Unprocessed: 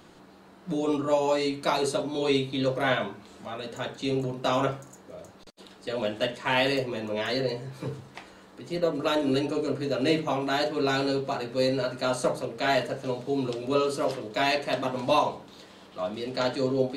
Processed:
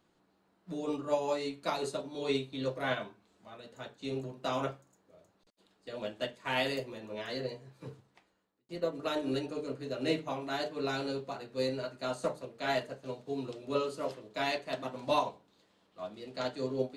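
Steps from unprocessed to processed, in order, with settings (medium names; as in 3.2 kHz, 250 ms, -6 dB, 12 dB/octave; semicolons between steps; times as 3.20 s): 6.36–6.98 s: treble shelf 9.8 kHz +8 dB; 7.99–8.69 s: fade out; upward expansion 1.5:1, over -47 dBFS; trim -5.5 dB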